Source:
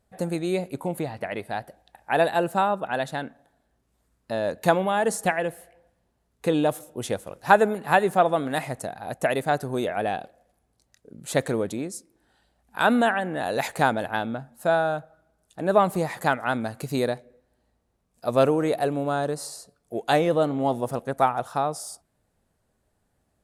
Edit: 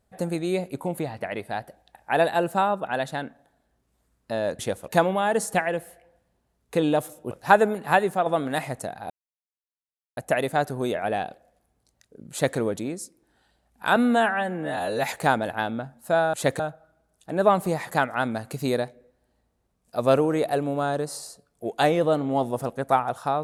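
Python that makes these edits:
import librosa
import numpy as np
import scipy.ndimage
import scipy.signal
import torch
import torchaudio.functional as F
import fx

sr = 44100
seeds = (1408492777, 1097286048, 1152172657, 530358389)

y = fx.edit(x, sr, fx.move(start_s=7.02, length_s=0.29, to_s=4.59),
    fx.fade_out_to(start_s=7.85, length_s=0.41, curve='qsin', floor_db=-6.5),
    fx.insert_silence(at_s=9.1, length_s=1.07),
    fx.duplicate(start_s=11.24, length_s=0.26, to_s=14.89),
    fx.stretch_span(start_s=12.89, length_s=0.75, factor=1.5), tone=tone)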